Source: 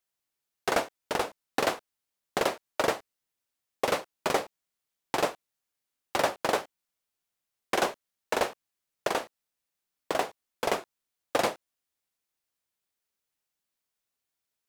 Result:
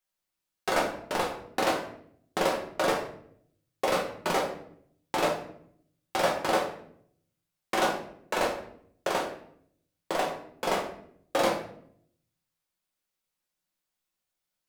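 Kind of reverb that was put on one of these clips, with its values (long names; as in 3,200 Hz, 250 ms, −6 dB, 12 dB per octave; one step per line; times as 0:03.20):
rectangular room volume 110 cubic metres, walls mixed, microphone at 1 metre
level −3 dB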